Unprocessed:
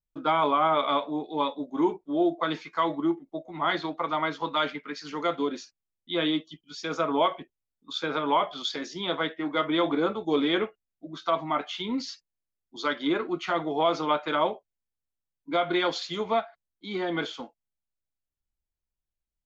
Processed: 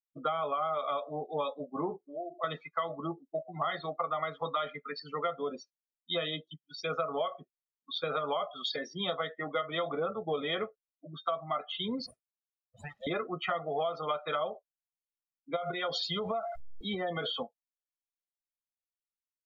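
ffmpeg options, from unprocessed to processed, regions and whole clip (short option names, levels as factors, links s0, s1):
-filter_complex "[0:a]asettb=1/sr,asplit=3[s0][s1][s2];[s0]atrim=end=1.974[s3];[s1]atrim=start=1.97:end=2.44,asetpts=PTS-STARTPTS,afade=t=in:d=0.004:c=qsin,afade=t=out:st=0.466:d=0.004:c=qsin,bandreject=f=60:t=h:w=6,bandreject=f=120:t=h:w=6,bandreject=f=180:t=h:w=6,bandreject=f=240:t=h:w=6,bandreject=f=300:t=h:w=6,bandreject=f=360:t=h:w=6,bandreject=f=420:t=h:w=6,acompressor=threshold=0.0126:ratio=3:attack=3.2:release=140:knee=1:detection=peak[s4];[s2]atrim=start=2.436[s5];[s3][s4]acrossfade=d=0.004:c1=hsin:c2=qsin[s6];[s6][s5]acrossfade=d=0.004:c1=qsin:c2=hsin,asettb=1/sr,asplit=3[s7][s8][s9];[s7]atrim=end=12.064[s10];[s8]atrim=start=12.06:end=13.07,asetpts=PTS-STARTPTS,afade=t=in:d=0.004:c=qsin,afade=t=out:st=1.006:d=0.004:c=qsin,aeval=exprs='abs(val(0))':c=same,highpass=46,acompressor=threshold=0.0178:ratio=20:attack=3.2:release=140:knee=1:detection=peak[s11];[s9]atrim=start=13.066[s12];[s10][s11]acrossfade=d=0.004:c1=hsin:c2=qsin[s13];[s13][s12]acrossfade=d=0.004:c1=qsin:c2=hsin,asettb=1/sr,asplit=3[s14][s15][s16];[s14]atrim=end=15.564[s17];[s15]atrim=start=15.56:end=17.43,asetpts=PTS-STARTPTS,afade=t=in:d=0.004:c=qsin,afade=t=out:st=1.866:d=0.004:c=qsin,aeval=exprs='val(0)+0.5*0.015*sgn(val(0))':c=same,acompressor=threshold=0.0447:ratio=16:attack=3.2:release=140:knee=1:detection=peak[s18];[s16]atrim=start=17.426[s19];[s17][s18]acrossfade=d=0.004:c1=hsin:c2=qsin[s20];[s20][s19]acrossfade=d=0.004:c1=qsin:c2=hsin,afftdn=nr=35:nf=-36,aecho=1:1:1.6:0.81,acompressor=threshold=0.0355:ratio=10"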